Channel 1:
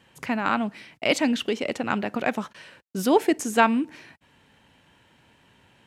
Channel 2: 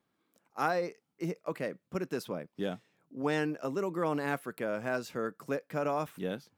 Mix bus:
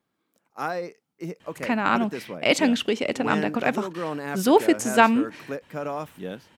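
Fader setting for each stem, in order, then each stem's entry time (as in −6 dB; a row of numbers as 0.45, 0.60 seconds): +2.0, +1.0 decibels; 1.40, 0.00 seconds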